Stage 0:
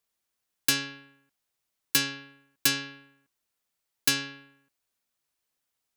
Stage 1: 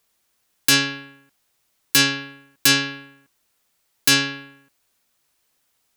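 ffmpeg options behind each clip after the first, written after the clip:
-af "alimiter=level_in=5.96:limit=0.891:release=50:level=0:latency=1,volume=0.75"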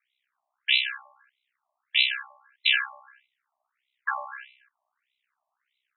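-af "aeval=exprs='val(0)*sin(2*PI*32*n/s)':c=same,highpass=f=440:t=q:w=4.2,afftfilt=real='re*between(b*sr/1024,820*pow(2900/820,0.5+0.5*sin(2*PI*1.6*pts/sr))/1.41,820*pow(2900/820,0.5+0.5*sin(2*PI*1.6*pts/sr))*1.41)':imag='im*between(b*sr/1024,820*pow(2900/820,0.5+0.5*sin(2*PI*1.6*pts/sr))/1.41,820*pow(2900/820,0.5+0.5*sin(2*PI*1.6*pts/sr))*1.41)':win_size=1024:overlap=0.75,volume=1.41"

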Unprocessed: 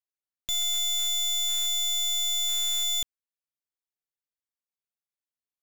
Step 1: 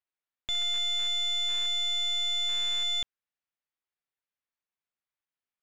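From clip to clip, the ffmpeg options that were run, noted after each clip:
-af "lowpass=2500,tiltshelf=f=930:g=-4,volume=1.41"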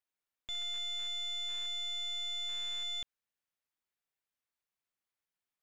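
-af "alimiter=level_in=2.82:limit=0.0631:level=0:latency=1,volume=0.355"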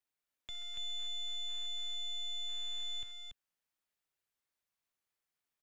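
-filter_complex "[0:a]acrossover=split=130[s0][s1];[s1]acompressor=threshold=0.00316:ratio=2[s2];[s0][s2]amix=inputs=2:normalize=0,aecho=1:1:284:0.631"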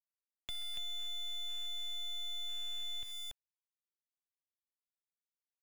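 -af "aeval=exprs='val(0)*gte(abs(val(0)),0.00422)':c=same,acompressor=threshold=0.00891:ratio=6,volume=1.68"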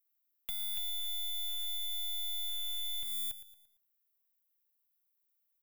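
-filter_complex "[0:a]aexciter=amount=5.8:drive=7.8:freq=11000,asplit=2[s0][s1];[s1]aecho=0:1:114|228|342|456:0.188|0.081|0.0348|0.015[s2];[s0][s2]amix=inputs=2:normalize=0"

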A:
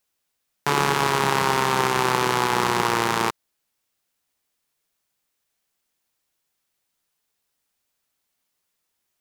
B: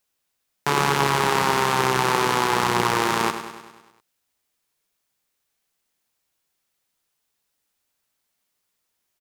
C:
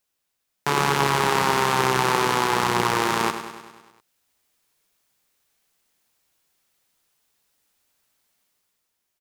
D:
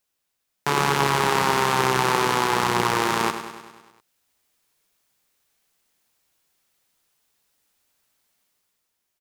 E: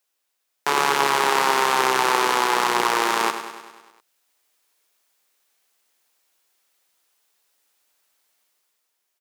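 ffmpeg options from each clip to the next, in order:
-af "aecho=1:1:100|200|300|400|500|600|700:0.316|0.183|0.106|0.0617|0.0358|0.0208|0.012"
-af "dynaudnorm=f=130:g=11:m=2.24,volume=0.841"
-af anull
-af "highpass=370,volume=1.26"

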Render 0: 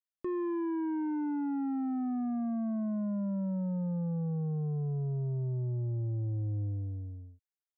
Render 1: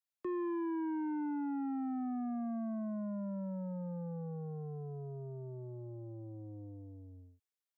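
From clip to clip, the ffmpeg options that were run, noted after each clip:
-filter_complex "[0:a]lowshelf=f=180:g=-11,acrossover=split=150|290|750[s0][s1][s2][s3];[s0]alimiter=level_in=21.1:limit=0.0631:level=0:latency=1,volume=0.0473[s4];[s4][s1][s2][s3]amix=inputs=4:normalize=0,volume=0.891"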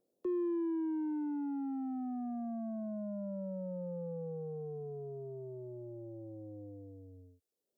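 -filter_complex "[0:a]equalizer=f=125:t=o:w=1:g=-7,equalizer=f=250:t=o:w=1:g=-3,equalizer=f=500:t=o:w=1:g=8,equalizer=f=1000:t=o:w=1:g=-9,equalizer=f=2000:t=o:w=1:g=-12,acrossover=split=150|540|860[s0][s1][s2][s3];[s1]acompressor=mode=upward:threshold=0.001:ratio=2.5[s4];[s0][s4][s2][s3]amix=inputs=4:normalize=0,volume=1.26"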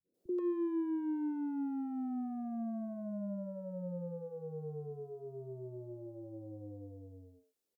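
-filter_complex "[0:a]adynamicequalizer=threshold=0.00316:dfrequency=770:dqfactor=1:tfrequency=770:tqfactor=1:attack=5:release=100:ratio=0.375:range=1.5:mode=cutabove:tftype=bell,acrossover=split=150|450[s0][s1][s2];[s1]adelay=40[s3];[s2]adelay=140[s4];[s0][s3][s4]amix=inputs=3:normalize=0,volume=1.33"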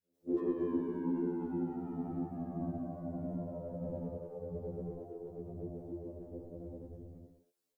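-af "afftfilt=real='hypot(re,im)*cos(2*PI*random(0))':imag='hypot(re,im)*sin(2*PI*random(1))':win_size=512:overlap=0.75,afftfilt=real='re*2*eq(mod(b,4),0)':imag='im*2*eq(mod(b,4),0)':win_size=2048:overlap=0.75,volume=2.82"

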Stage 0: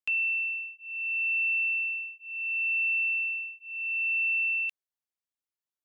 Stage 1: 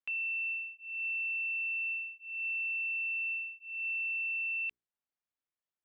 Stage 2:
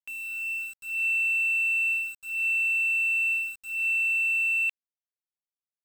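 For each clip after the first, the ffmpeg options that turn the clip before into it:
-af "lowpass=2700,alimiter=level_in=2.37:limit=0.0631:level=0:latency=1,volume=0.422,bandreject=f=60:t=h:w=6,bandreject=f=120:t=h:w=6,bandreject=f=180:t=h:w=6,bandreject=f=240:t=h:w=6,bandreject=f=300:t=h:w=6,bandreject=f=360:t=h:w=6,bandreject=f=420:t=h:w=6"
-af "dynaudnorm=f=100:g=11:m=2.99,aeval=exprs='0.0841*(cos(1*acos(clip(val(0)/0.0841,-1,1)))-cos(1*PI/2))+0.00422*(cos(3*acos(clip(val(0)/0.0841,-1,1)))-cos(3*PI/2))+0.000473*(cos(6*acos(clip(val(0)/0.0841,-1,1)))-cos(6*PI/2))+0.00119*(cos(7*acos(clip(val(0)/0.0841,-1,1)))-cos(7*PI/2))':c=same,aeval=exprs='val(0)*gte(abs(val(0)),0.00944)':c=same"

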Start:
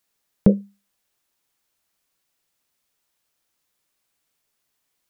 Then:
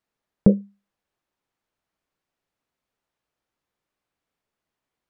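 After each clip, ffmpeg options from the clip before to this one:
-af "lowpass=f=1200:p=1"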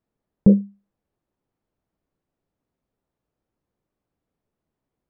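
-af "tiltshelf=f=830:g=9.5,alimiter=limit=0.631:level=0:latency=1:release=30"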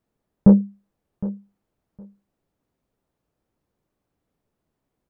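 -af "acontrast=48,aecho=1:1:762|1524:0.158|0.0254,volume=0.794"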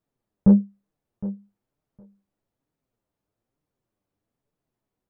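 -af "flanger=delay=6.3:depth=4.5:regen=41:speed=1.1:shape=triangular,volume=0.841"

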